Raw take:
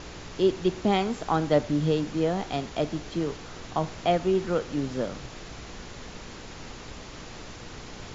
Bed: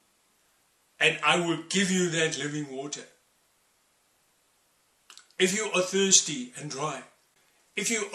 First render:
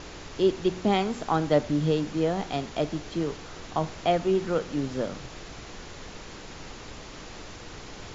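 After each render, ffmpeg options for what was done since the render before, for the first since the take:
-af "bandreject=f=60:t=h:w=4,bandreject=f=120:t=h:w=4,bandreject=f=180:t=h:w=4,bandreject=f=240:t=h:w=4"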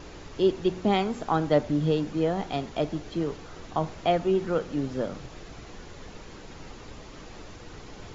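-af "afftdn=nr=6:nf=-43"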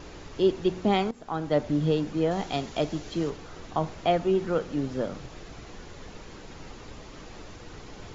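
-filter_complex "[0:a]asettb=1/sr,asplit=3[s0][s1][s2];[s0]atrim=end=2.314[s3];[s1]atrim=start=2.31:end=3.3,asetpts=PTS-STARTPTS,afade=t=in:d=0.004:c=qsin,afade=t=out:st=0.986:d=0.004:c=qsin,highshelf=f=3700:g=8[s4];[s2]atrim=start=3.296[s5];[s3][s4]acrossfade=d=0.004:c1=hsin:c2=qsin[s6];[s6][s5]acrossfade=d=0.004:c1=qsin:c2=hsin,asplit=2[s7][s8];[s7]atrim=end=1.11,asetpts=PTS-STARTPTS,afade=t=out:st=1.106:d=0.004:c=hsin:silence=0.158489[s9];[s8]atrim=start=1.11,asetpts=PTS-STARTPTS,afade=t=in:d=0.62:silence=0.158489[s10];[s9][s10]concat=n=2:v=0:a=1"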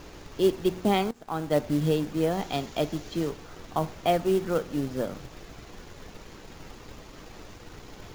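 -af "acrusher=bits=5:mode=log:mix=0:aa=0.000001,aeval=exprs='sgn(val(0))*max(abs(val(0))-0.00168,0)':c=same"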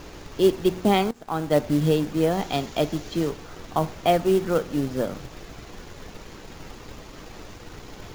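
-af "volume=1.58"

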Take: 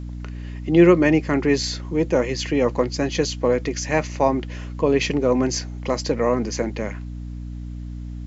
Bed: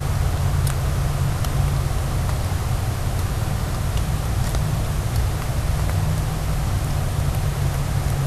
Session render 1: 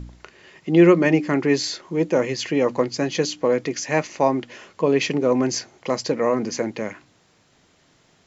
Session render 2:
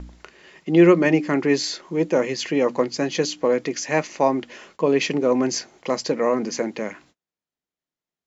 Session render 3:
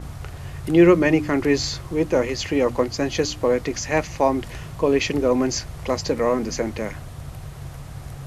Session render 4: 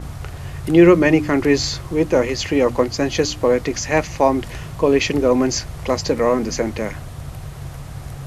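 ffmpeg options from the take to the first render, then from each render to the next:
-af "bandreject=f=60:t=h:w=4,bandreject=f=120:t=h:w=4,bandreject=f=180:t=h:w=4,bandreject=f=240:t=h:w=4,bandreject=f=300:t=h:w=4"
-af "agate=range=0.02:threshold=0.00282:ratio=16:detection=peak,equalizer=f=110:t=o:w=0.36:g=-14"
-filter_complex "[1:a]volume=0.2[s0];[0:a][s0]amix=inputs=2:normalize=0"
-af "volume=1.5,alimiter=limit=0.891:level=0:latency=1"

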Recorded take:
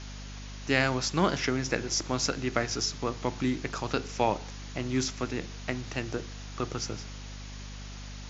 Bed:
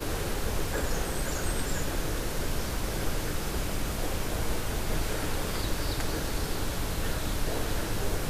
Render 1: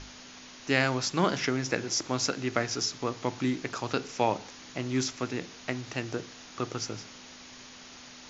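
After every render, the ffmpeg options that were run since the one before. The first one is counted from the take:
-af "bandreject=f=50:t=h:w=6,bandreject=f=100:t=h:w=6,bandreject=f=150:t=h:w=6,bandreject=f=200:t=h:w=6"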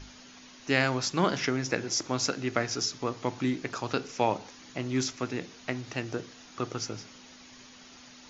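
-af "afftdn=nr=6:nf=-49"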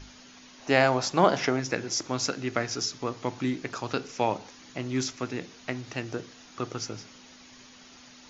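-filter_complex "[0:a]asettb=1/sr,asplit=3[s0][s1][s2];[s0]atrim=end=0.584[s3];[s1]atrim=start=0.58:end=1.6,asetpts=PTS-STARTPTS,afade=t=in:d=0.004:c=qsin,afade=t=out:st=1.016:d=0.004:c=qsin,equalizer=f=700:w=1.2:g=10.5[s4];[s2]atrim=start=1.596[s5];[s3][s4]acrossfade=d=0.004:c1=hsin:c2=qsin[s6];[s6][s5]acrossfade=d=0.004:c1=qsin:c2=hsin"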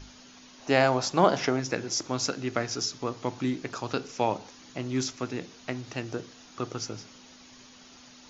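-af "equalizer=f=2000:t=o:w=0.87:g=-3"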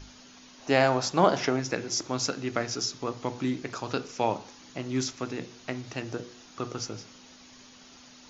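-af "bandreject=f=121.6:t=h:w=4,bandreject=f=243.2:t=h:w=4,bandreject=f=364.8:t=h:w=4,bandreject=f=486.4:t=h:w=4,bandreject=f=608:t=h:w=4,bandreject=f=729.6:t=h:w=4,bandreject=f=851.2:t=h:w=4,bandreject=f=972.8:t=h:w=4,bandreject=f=1094.4:t=h:w=4,bandreject=f=1216:t=h:w=4,bandreject=f=1337.6:t=h:w=4,bandreject=f=1459.2:t=h:w=4,bandreject=f=1580.8:t=h:w=4,bandreject=f=1702.4:t=h:w=4,bandreject=f=1824:t=h:w=4,bandreject=f=1945.6:t=h:w=4,bandreject=f=2067.2:t=h:w=4,bandreject=f=2188.8:t=h:w=4,bandreject=f=2310.4:t=h:w=4,bandreject=f=2432:t=h:w=4,bandreject=f=2553.6:t=h:w=4,bandreject=f=2675.2:t=h:w=4,bandreject=f=2796.8:t=h:w=4,bandreject=f=2918.4:t=h:w=4,bandreject=f=3040:t=h:w=4,bandreject=f=3161.6:t=h:w=4,bandreject=f=3283.2:t=h:w=4,bandreject=f=3404.8:t=h:w=4,bandreject=f=3526.4:t=h:w=4,bandreject=f=3648:t=h:w=4,bandreject=f=3769.6:t=h:w=4,bandreject=f=3891.2:t=h:w=4,bandreject=f=4012.8:t=h:w=4"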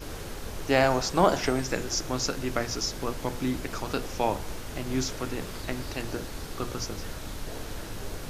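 -filter_complex "[1:a]volume=0.447[s0];[0:a][s0]amix=inputs=2:normalize=0"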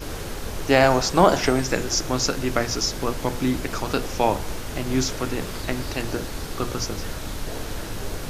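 -af "volume=2,alimiter=limit=0.794:level=0:latency=1"

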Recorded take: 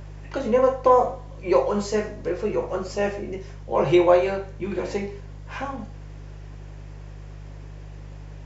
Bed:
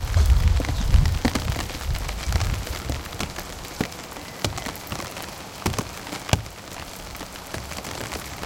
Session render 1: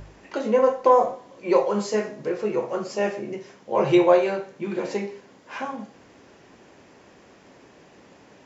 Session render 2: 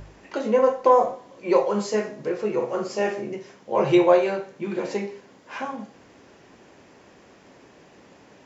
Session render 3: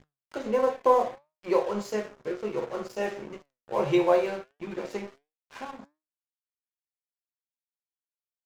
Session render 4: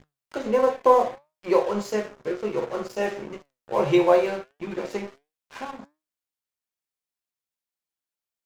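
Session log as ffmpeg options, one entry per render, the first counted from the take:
-af "bandreject=f=50:t=h:w=4,bandreject=f=100:t=h:w=4,bandreject=f=150:t=h:w=4"
-filter_complex "[0:a]asettb=1/sr,asplit=3[s0][s1][s2];[s0]atrim=end=2.554[s3];[s1]atrim=start=2.55:end=3.28,asetpts=PTS-STARTPTS,afade=t=in:d=0.004:c=qsin,afade=t=out:st=0.726:d=0.004:c=qsin,asplit=2[s4][s5];[s5]adelay=47,volume=0.376[s6];[s4][s6]amix=inputs=2:normalize=0,atrim=end_sample=32193[s7];[s2]atrim=start=3.276[s8];[s3][s7]acrossfade=d=0.004:c1=hsin:c2=qsin[s9];[s9][s8]acrossfade=d=0.004:c1=qsin:c2=hsin"
-af "aeval=exprs='sgn(val(0))*max(abs(val(0))-0.0141,0)':c=same,flanger=delay=6.4:depth=2:regen=84:speed=1.5:shape=sinusoidal"
-af "volume=1.58"

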